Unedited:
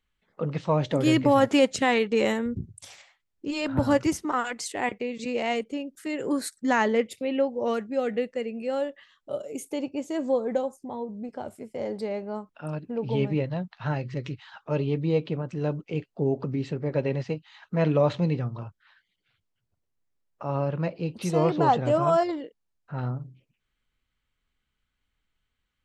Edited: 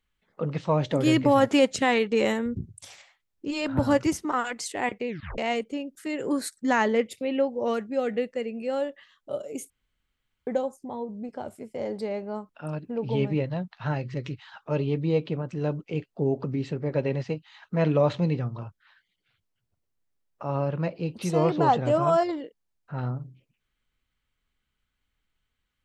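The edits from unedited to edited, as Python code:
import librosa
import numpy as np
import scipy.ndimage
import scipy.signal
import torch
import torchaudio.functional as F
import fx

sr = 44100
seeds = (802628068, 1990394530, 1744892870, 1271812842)

y = fx.edit(x, sr, fx.tape_stop(start_s=5.08, length_s=0.3),
    fx.room_tone_fill(start_s=9.7, length_s=0.77), tone=tone)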